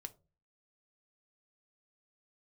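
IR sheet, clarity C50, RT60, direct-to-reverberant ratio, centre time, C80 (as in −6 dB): 19.5 dB, non-exponential decay, 8.5 dB, 3 ms, 26.0 dB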